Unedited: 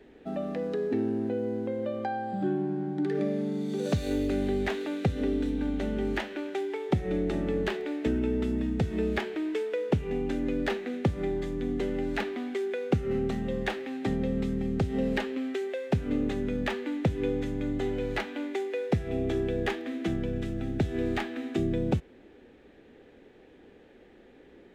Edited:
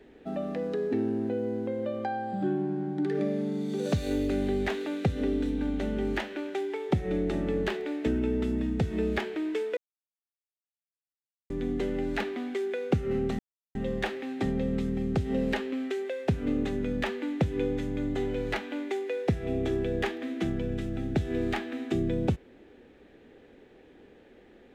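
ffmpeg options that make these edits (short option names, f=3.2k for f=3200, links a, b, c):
-filter_complex "[0:a]asplit=4[a][b][c][d];[a]atrim=end=9.77,asetpts=PTS-STARTPTS,afade=t=out:st=9.766:d=0.004:c=hsin[e];[b]atrim=start=9.77:end=11.5,asetpts=PTS-STARTPTS,volume=0[f];[c]atrim=start=11.5:end=13.39,asetpts=PTS-STARTPTS,afade=t=in:d=0.004:c=hsin,afade=t=out:st=1.886:d=0.004:c=hsin,apad=pad_dur=0.36[g];[d]atrim=start=13.39,asetpts=PTS-STARTPTS,afade=t=in:d=0.004:c=hsin[h];[e][f][g][h]concat=n=4:v=0:a=1"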